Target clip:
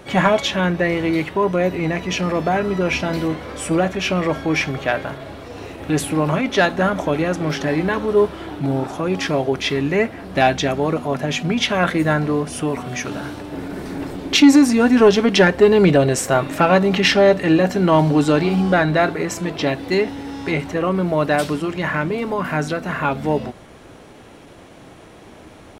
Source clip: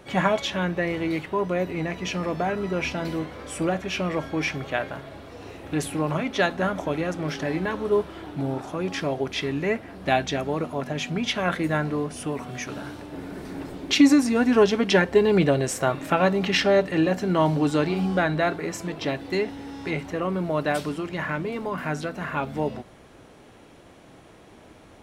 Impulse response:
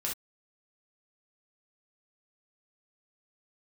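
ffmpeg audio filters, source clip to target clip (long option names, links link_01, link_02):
-af "acontrast=85,atempo=0.97"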